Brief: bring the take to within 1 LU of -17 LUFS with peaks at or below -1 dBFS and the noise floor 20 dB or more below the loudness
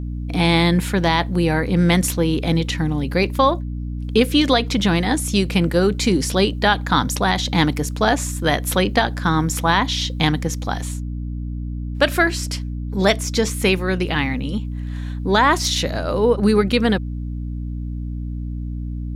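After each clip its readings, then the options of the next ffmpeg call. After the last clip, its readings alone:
hum 60 Hz; harmonics up to 300 Hz; hum level -24 dBFS; loudness -20.0 LUFS; peak -3.0 dBFS; loudness target -17.0 LUFS
-> -af "bandreject=f=60:t=h:w=4,bandreject=f=120:t=h:w=4,bandreject=f=180:t=h:w=4,bandreject=f=240:t=h:w=4,bandreject=f=300:t=h:w=4"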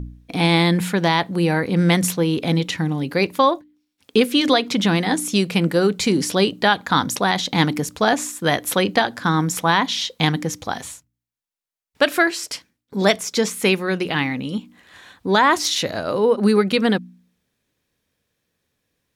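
hum none; loudness -19.5 LUFS; peak -4.0 dBFS; loudness target -17.0 LUFS
-> -af "volume=2.5dB"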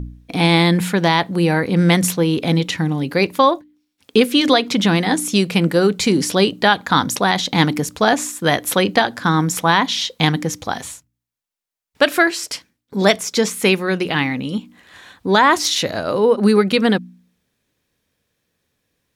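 loudness -17.0 LUFS; peak -1.5 dBFS; noise floor -76 dBFS

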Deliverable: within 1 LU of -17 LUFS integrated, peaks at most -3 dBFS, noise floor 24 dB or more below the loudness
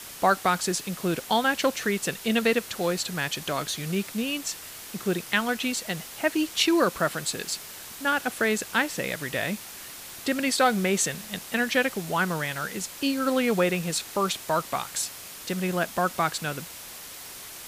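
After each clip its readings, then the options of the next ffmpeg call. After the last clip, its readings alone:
noise floor -42 dBFS; noise floor target -51 dBFS; loudness -26.5 LUFS; peak -8.5 dBFS; loudness target -17.0 LUFS
-> -af "afftdn=nr=9:nf=-42"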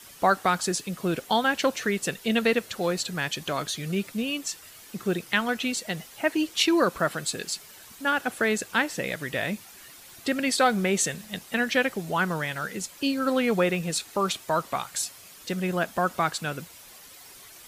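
noise floor -48 dBFS; noise floor target -51 dBFS
-> -af "afftdn=nr=6:nf=-48"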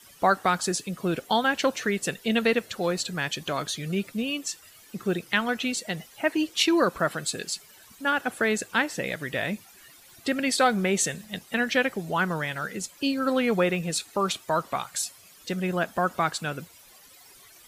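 noise floor -53 dBFS; loudness -27.0 LUFS; peak -8.5 dBFS; loudness target -17.0 LUFS
-> -af "volume=10dB,alimiter=limit=-3dB:level=0:latency=1"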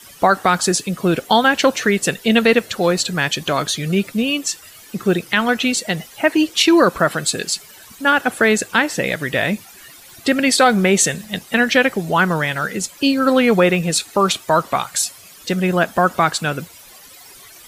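loudness -17.5 LUFS; peak -3.0 dBFS; noise floor -43 dBFS

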